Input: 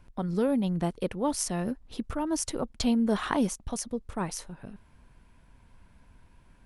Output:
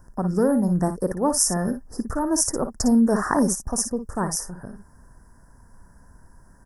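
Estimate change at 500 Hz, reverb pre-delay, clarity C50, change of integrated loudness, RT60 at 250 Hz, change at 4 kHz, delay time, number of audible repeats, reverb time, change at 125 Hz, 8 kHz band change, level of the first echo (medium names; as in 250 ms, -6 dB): +6.5 dB, no reverb, no reverb, +7.5 dB, no reverb, +4.5 dB, 56 ms, 1, no reverb, +6.5 dB, +11.5 dB, -10.0 dB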